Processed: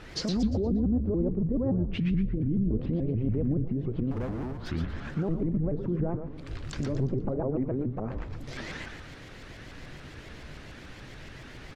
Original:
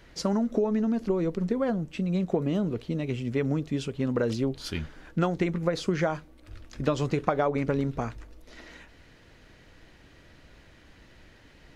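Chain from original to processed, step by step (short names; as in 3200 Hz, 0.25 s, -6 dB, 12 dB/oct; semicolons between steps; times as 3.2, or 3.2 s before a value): 1.98–2.71 Chebyshev band-stop 270–2100 Hz, order 2; treble ducked by the level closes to 400 Hz, closed at -25.5 dBFS; 7.56–8.16 RIAA curve recording; in parallel at +1 dB: compressor, threshold -37 dBFS, peak gain reduction 14.5 dB; on the sum: limiter -23 dBFS, peak gain reduction 11 dB; 4.11–4.7 hard clip -35 dBFS, distortion -16 dB; resonator 120 Hz, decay 0.42 s, harmonics all, mix 50%; frequency-shifting echo 0.117 s, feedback 40%, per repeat -150 Hz, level -5 dB; shaped vibrato saw up 7 Hz, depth 250 cents; gain +6 dB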